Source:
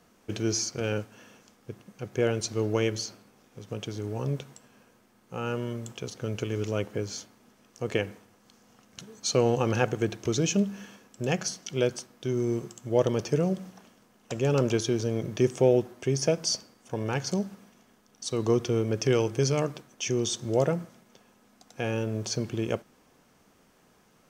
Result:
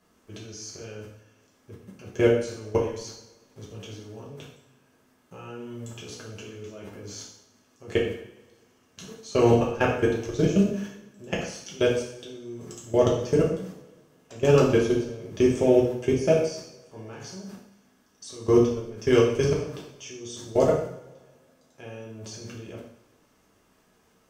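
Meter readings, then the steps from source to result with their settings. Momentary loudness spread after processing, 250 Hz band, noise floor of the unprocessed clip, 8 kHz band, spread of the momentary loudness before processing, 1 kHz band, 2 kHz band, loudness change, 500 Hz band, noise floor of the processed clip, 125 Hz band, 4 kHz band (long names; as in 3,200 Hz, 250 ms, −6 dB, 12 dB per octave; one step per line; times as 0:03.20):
21 LU, +2.5 dB, −63 dBFS, −6.5 dB, 13 LU, +2.5 dB, +1.5 dB, +5.0 dB, +4.0 dB, −64 dBFS, −0.5 dB, −3.5 dB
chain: output level in coarse steps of 24 dB
coupled-rooms reverb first 0.67 s, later 2 s, from −22 dB, DRR −4.5 dB
level +2.5 dB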